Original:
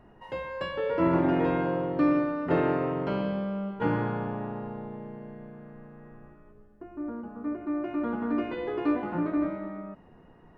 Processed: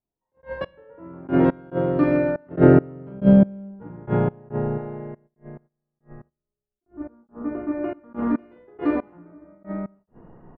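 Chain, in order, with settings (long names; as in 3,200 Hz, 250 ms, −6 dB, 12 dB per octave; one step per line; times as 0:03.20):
double-tracking delay 46 ms −3 dB
single-tap delay 122 ms −11.5 dB
gate pattern "..x...x.xxx.x" 70 BPM −24 dB
low-pass that shuts in the quiet parts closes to 1,300 Hz, open at −24.5 dBFS
0:02.49–0:04.78: low-shelf EQ 420 Hz +10 dB
noise gate −55 dBFS, range −18 dB
high-shelf EQ 2,300 Hz −9.5 dB
level that may rise only so fast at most 320 dB per second
level +5.5 dB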